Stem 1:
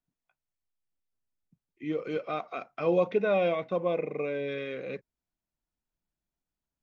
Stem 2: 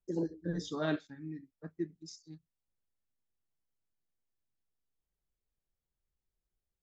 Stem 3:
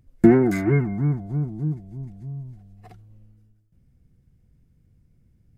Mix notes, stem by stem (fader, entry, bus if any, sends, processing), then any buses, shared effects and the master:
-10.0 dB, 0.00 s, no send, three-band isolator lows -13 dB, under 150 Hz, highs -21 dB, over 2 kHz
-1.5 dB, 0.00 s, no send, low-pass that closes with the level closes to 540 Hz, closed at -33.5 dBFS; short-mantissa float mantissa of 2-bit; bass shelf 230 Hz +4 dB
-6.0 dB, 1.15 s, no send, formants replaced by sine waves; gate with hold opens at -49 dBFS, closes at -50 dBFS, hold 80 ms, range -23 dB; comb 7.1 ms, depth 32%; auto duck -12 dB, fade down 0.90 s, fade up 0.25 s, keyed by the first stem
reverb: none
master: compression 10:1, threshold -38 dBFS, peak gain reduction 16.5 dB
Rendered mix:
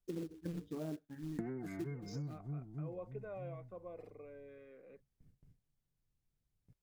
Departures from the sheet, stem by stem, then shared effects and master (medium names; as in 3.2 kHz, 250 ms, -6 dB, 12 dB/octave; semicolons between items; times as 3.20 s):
stem 1 -10.0 dB -> -20.5 dB; stem 3: missing formants replaced by sine waves